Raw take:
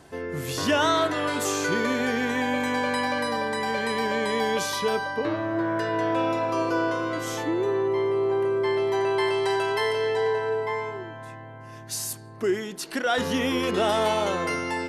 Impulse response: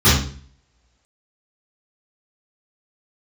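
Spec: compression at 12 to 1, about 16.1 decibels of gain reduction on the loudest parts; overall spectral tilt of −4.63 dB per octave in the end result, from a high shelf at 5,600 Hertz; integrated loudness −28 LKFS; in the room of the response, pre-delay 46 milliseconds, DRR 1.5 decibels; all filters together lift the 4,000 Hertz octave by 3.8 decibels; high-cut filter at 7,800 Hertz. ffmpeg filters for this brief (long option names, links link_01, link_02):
-filter_complex "[0:a]lowpass=7800,equalizer=frequency=4000:width_type=o:gain=3.5,highshelf=frequency=5600:gain=4.5,acompressor=threshold=-34dB:ratio=12,asplit=2[link_01][link_02];[1:a]atrim=start_sample=2205,adelay=46[link_03];[link_02][link_03]afir=irnorm=-1:irlink=0,volume=-25.5dB[link_04];[link_01][link_04]amix=inputs=2:normalize=0,volume=6.5dB"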